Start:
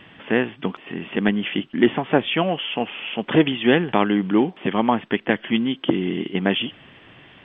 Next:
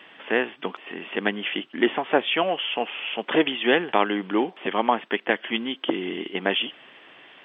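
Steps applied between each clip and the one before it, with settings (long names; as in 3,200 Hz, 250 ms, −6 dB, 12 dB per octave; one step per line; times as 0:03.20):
high-pass filter 400 Hz 12 dB per octave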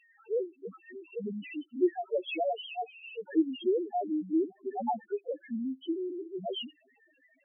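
adaptive Wiener filter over 9 samples
spectral peaks only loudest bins 1
level +2 dB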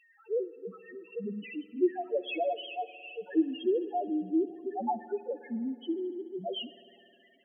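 spring reverb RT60 2.6 s, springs 52 ms, chirp 45 ms, DRR 15.5 dB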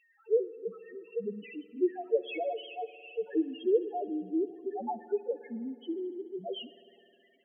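hollow resonant body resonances 440/2,200 Hz, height 12 dB, ringing for 50 ms
level −4.5 dB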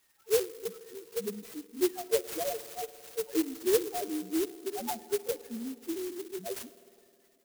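converter with an unsteady clock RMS 0.13 ms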